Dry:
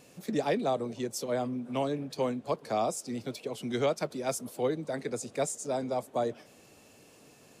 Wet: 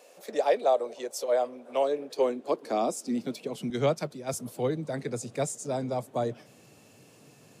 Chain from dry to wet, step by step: high-pass sweep 560 Hz -> 120 Hz, 1.67–4.07; 3.7–4.34 three-band expander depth 100%

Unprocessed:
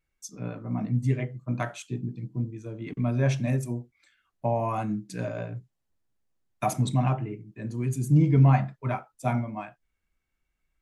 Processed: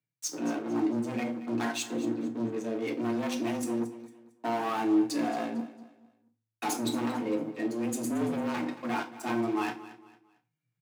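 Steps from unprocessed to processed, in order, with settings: dynamic EQ 4300 Hz, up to +6 dB, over -53 dBFS, Q 1.2; sample leveller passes 5; reverse; compressor 6:1, threshold -33 dBFS, peak gain reduction 18.5 dB; reverse; frequency shift +110 Hz; feedback echo 0.226 s, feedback 33%, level -16 dB; on a send at -4 dB: reverb RT60 0.30 s, pre-delay 3 ms

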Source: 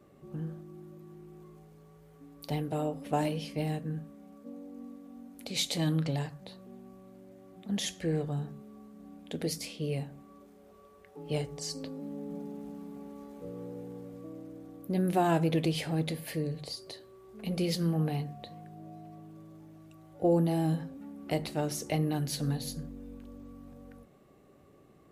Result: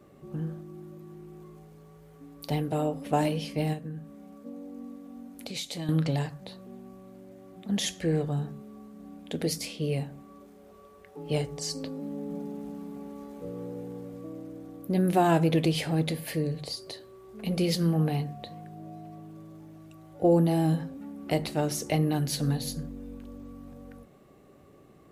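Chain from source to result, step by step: 3.73–5.89 compressor 3:1, threshold -40 dBFS, peak gain reduction 11 dB; gain +4 dB

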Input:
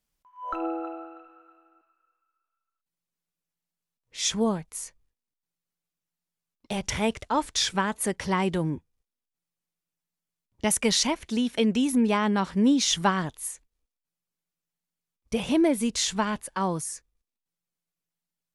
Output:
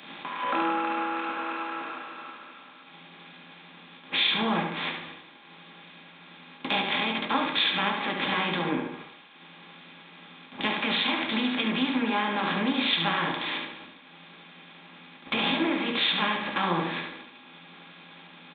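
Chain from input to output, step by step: per-bin compression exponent 0.4; limiter -12 dBFS, peak gain reduction 7.5 dB; HPF 420 Hz 6 dB/oct; feedback echo 72 ms, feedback 41%, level -5.5 dB; reverb RT60 0.40 s, pre-delay 3 ms, DRR 3.5 dB; downsampling 8000 Hz; compressor 4:1, threshold -35 dBFS, peak gain reduction 13.5 dB; three-band expander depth 100%; gain +8.5 dB

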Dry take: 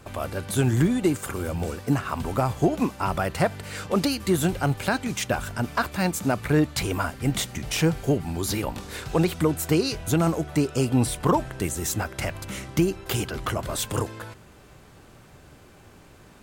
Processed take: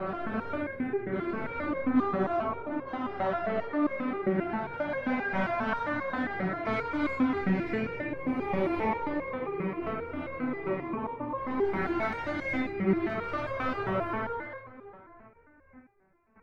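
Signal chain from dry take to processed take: spectral swells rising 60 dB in 2.98 s; elliptic low-pass 2200 Hz, stop band 40 dB; gate with hold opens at -37 dBFS; negative-ratio compressor -24 dBFS, ratio -1; soft clip -19 dBFS, distortion -14 dB; flange 0.75 Hz, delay 4.9 ms, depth 8.4 ms, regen +49%; tape echo 0.624 s, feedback 22%, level -14.5 dB, low-pass 1200 Hz; non-linear reverb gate 0.4 s rising, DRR -3.5 dB; stepped resonator 7.5 Hz 190–540 Hz; gain +9 dB

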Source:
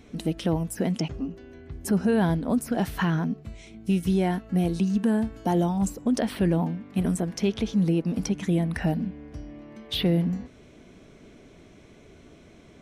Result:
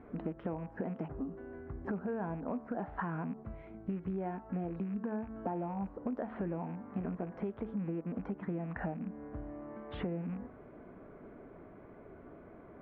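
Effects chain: rattling part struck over -28 dBFS, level -30 dBFS; LPF 1400 Hz 24 dB/oct; low shelf 360 Hz -10.5 dB; de-hum 74.14 Hz, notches 16; compressor 6:1, threshold -40 dBFS, peak gain reduction 14.5 dB; gain +5 dB

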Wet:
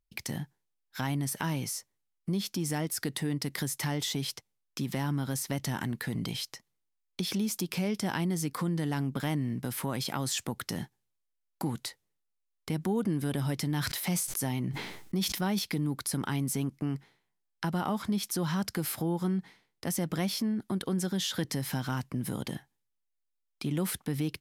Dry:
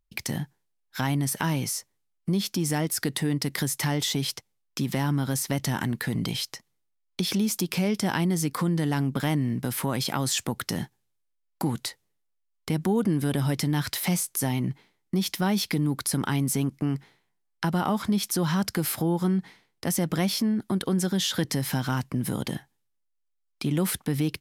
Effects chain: 13.69–15.59 sustainer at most 46 dB/s; gain -5.5 dB

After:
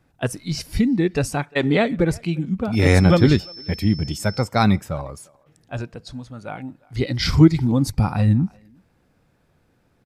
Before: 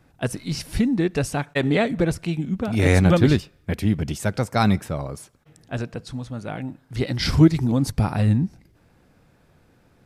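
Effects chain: 2.73–4.46 whine 5300 Hz -38 dBFS; spectral noise reduction 7 dB; speakerphone echo 0.35 s, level -25 dB; gain +2 dB

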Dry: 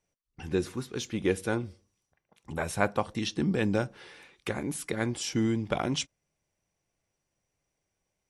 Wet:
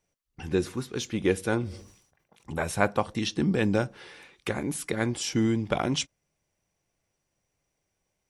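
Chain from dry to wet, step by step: 1.5–2.59 sustainer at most 87 dB/s; gain +2.5 dB

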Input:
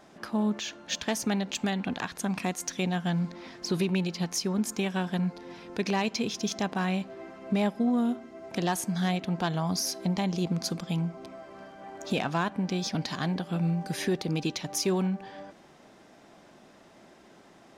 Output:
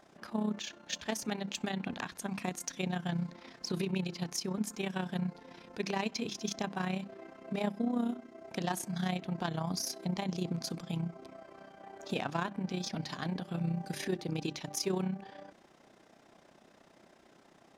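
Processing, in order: notches 50/100/150/200/250/300/350 Hz; AM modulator 31 Hz, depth 50%; gain -3 dB

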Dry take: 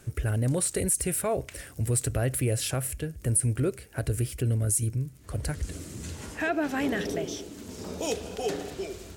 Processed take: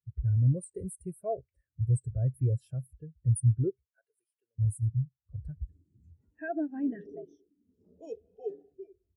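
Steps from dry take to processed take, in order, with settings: 3.92–4.59 HPF 810 Hz 12 dB/oct; spectral expander 2.5:1; gain -1 dB

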